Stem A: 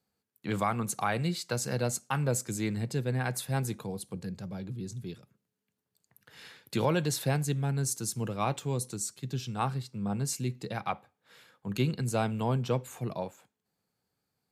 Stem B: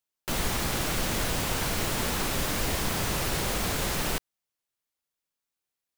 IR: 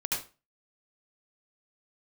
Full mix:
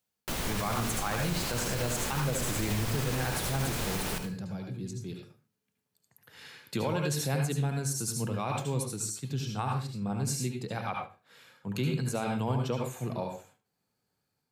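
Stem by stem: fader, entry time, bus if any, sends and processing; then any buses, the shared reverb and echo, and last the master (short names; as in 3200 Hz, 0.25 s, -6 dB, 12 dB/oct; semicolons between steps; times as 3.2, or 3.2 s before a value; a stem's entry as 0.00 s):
-14.0 dB, 0.00 s, send -3.5 dB, AGC gain up to 9.5 dB
+2.0 dB, 0.00 s, send -20 dB, auto duck -9 dB, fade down 0.30 s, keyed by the first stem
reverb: on, RT60 0.30 s, pre-delay 68 ms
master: limiter -21 dBFS, peak gain reduction 6.5 dB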